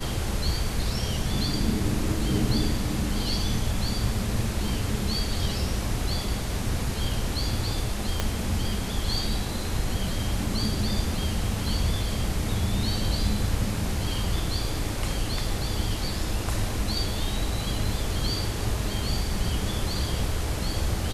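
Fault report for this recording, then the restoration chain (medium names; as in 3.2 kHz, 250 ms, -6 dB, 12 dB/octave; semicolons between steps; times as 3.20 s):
8.20 s: pop -10 dBFS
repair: de-click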